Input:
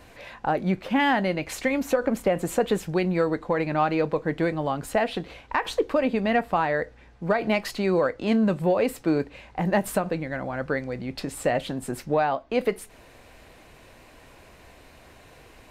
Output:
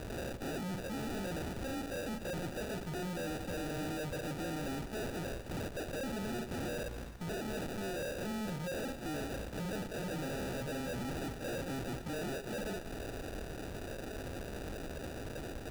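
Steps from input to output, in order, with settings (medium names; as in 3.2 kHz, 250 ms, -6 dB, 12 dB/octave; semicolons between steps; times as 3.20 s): delay that grows with frequency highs early, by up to 152 ms; reverse; compression 6:1, threshold -32 dBFS, peak gain reduction 15 dB; reverse; valve stage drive 51 dB, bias 0.65; sample-and-hold 41×; two-band feedback delay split 780 Hz, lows 90 ms, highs 261 ms, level -15 dB; trim +13.5 dB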